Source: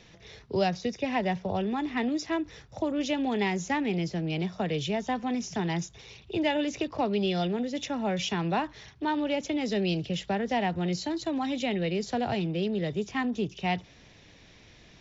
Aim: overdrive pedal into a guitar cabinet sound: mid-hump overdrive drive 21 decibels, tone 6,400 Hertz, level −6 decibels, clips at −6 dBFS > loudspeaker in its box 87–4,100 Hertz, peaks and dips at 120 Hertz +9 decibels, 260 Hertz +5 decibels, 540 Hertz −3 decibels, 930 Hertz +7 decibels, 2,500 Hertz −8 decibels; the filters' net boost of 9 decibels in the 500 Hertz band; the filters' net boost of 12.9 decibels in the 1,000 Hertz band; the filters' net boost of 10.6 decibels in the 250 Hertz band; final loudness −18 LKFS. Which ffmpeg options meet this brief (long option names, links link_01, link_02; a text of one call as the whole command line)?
ffmpeg -i in.wav -filter_complex "[0:a]equalizer=frequency=250:width_type=o:gain=7,equalizer=frequency=500:width_type=o:gain=8,equalizer=frequency=1000:width_type=o:gain=8.5,asplit=2[link_01][link_02];[link_02]highpass=frequency=720:poles=1,volume=21dB,asoftclip=type=tanh:threshold=-6dB[link_03];[link_01][link_03]amix=inputs=2:normalize=0,lowpass=frequency=6400:poles=1,volume=-6dB,highpass=87,equalizer=frequency=120:width_type=q:width=4:gain=9,equalizer=frequency=260:width_type=q:width=4:gain=5,equalizer=frequency=540:width_type=q:width=4:gain=-3,equalizer=frequency=930:width_type=q:width=4:gain=7,equalizer=frequency=2500:width_type=q:width=4:gain=-8,lowpass=frequency=4100:width=0.5412,lowpass=frequency=4100:width=1.3066,volume=-3.5dB" out.wav